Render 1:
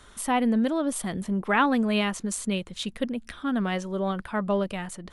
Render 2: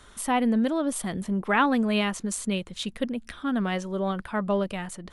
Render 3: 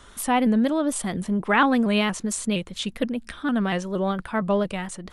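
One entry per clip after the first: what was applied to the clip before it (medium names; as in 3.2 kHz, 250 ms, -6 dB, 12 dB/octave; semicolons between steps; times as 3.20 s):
no audible change
vibrato with a chosen wave saw up 4.3 Hz, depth 100 cents; trim +3 dB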